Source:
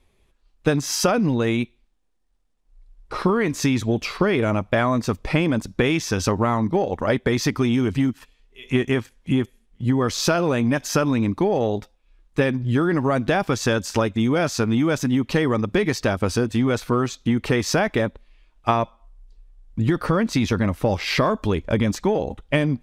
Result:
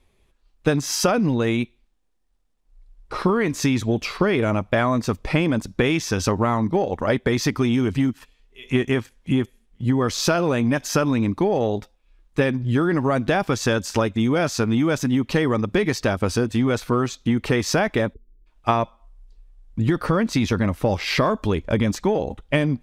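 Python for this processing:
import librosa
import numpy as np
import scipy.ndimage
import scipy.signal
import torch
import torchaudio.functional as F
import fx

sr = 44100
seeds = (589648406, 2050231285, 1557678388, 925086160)

y = fx.spec_erase(x, sr, start_s=18.14, length_s=0.32, low_hz=470.0, high_hz=12000.0)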